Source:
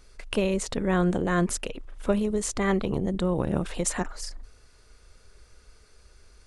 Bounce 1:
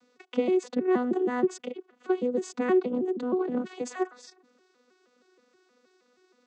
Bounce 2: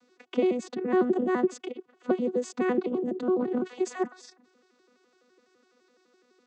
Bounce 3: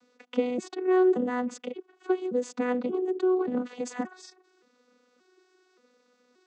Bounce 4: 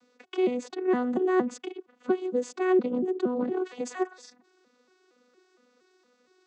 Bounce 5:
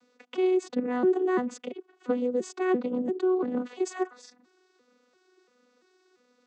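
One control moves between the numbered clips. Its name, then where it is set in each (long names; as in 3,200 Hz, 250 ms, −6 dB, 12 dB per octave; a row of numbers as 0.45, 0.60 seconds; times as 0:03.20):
vocoder with an arpeggio as carrier, a note every: 158, 84, 577, 232, 342 milliseconds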